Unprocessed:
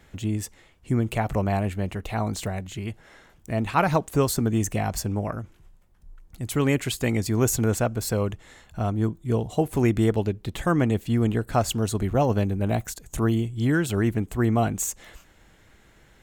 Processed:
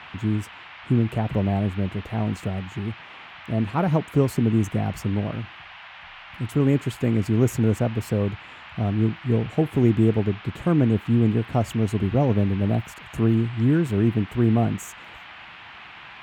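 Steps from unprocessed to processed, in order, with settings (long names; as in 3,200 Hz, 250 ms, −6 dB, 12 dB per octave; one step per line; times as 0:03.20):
high-pass filter 99 Hz
tilt shelving filter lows +8.5 dB, about 700 Hz
noise in a band 700–3,000 Hz −40 dBFS
level −3 dB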